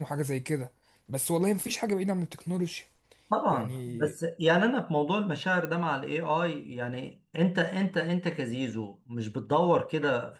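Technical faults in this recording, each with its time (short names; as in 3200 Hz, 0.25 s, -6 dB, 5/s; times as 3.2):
5.65 pop -19 dBFS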